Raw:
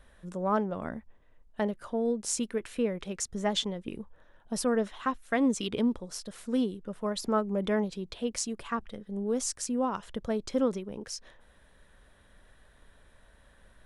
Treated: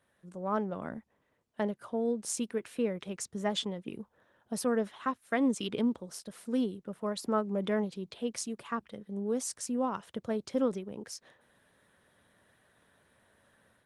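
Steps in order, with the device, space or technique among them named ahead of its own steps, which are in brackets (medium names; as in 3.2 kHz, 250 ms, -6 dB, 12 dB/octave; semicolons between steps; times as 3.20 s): video call (high-pass 100 Hz 24 dB/octave; level rider gain up to 7 dB; trim -9 dB; Opus 24 kbps 48 kHz)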